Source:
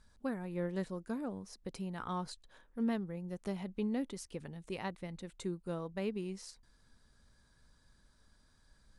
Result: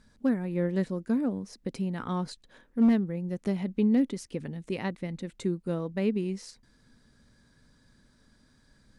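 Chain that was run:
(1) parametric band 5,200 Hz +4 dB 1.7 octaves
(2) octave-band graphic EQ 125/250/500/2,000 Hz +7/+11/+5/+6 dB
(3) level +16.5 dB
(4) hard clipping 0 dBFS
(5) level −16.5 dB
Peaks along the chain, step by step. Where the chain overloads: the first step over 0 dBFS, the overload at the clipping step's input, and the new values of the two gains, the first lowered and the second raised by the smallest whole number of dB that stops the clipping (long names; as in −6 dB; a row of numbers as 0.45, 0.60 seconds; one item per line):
−23.5, −12.5, +4.0, 0.0, −16.5 dBFS
step 3, 4.0 dB
step 3 +12.5 dB, step 5 −12.5 dB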